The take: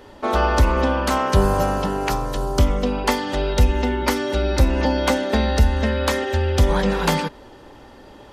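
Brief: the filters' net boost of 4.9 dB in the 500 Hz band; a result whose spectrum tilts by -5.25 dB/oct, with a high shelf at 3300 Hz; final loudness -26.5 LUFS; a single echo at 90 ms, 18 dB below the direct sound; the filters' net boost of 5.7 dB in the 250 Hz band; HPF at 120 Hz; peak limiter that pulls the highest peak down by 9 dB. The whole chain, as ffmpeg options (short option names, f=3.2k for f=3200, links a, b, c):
-af "highpass=120,equalizer=f=250:t=o:g=6,equalizer=f=500:t=o:g=4.5,highshelf=f=3.3k:g=-5,alimiter=limit=-10.5dB:level=0:latency=1,aecho=1:1:90:0.126,volume=-6dB"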